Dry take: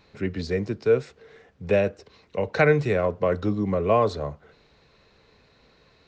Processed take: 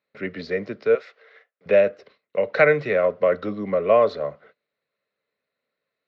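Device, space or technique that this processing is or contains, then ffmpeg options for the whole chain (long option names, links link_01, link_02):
kitchen radio: -filter_complex "[0:a]agate=range=-25dB:threshold=-50dB:ratio=16:detection=peak,asettb=1/sr,asplit=3[link_01][link_02][link_03];[link_01]atrim=end=0.954[link_04];[link_02]atrim=start=0.95:end=1.66,asetpts=PTS-STARTPTS,afade=type=in:duration=0.004:curve=qsin,afade=type=out:start_time=0.706:duration=0.004:curve=qsin,highpass=670[link_05];[link_03]atrim=start=1.656[link_06];[link_04][link_05]acrossfade=duration=0.004:curve1=hsin:curve2=qsin[link_07];[link_07][link_06]acrossfade=duration=0.004:curve1=qsin:curve2=hsin,highpass=220,equalizer=frequency=330:width_type=q:width=4:gain=-4,equalizer=frequency=580:width_type=q:width=4:gain=8,equalizer=frequency=870:width_type=q:width=4:gain=-6,equalizer=frequency=1300:width_type=q:width=4:gain=5,equalizer=frequency=2000:width_type=q:width=4:gain=7,lowpass=frequency=4600:width=0.5412,lowpass=frequency=4600:width=1.3066"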